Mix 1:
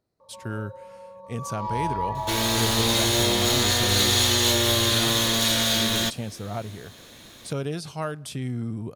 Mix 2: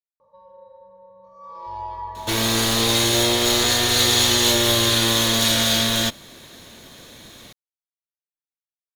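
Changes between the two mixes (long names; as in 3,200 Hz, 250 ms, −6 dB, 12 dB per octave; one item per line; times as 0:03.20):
speech: muted
first sound −4.0 dB
second sound +3.5 dB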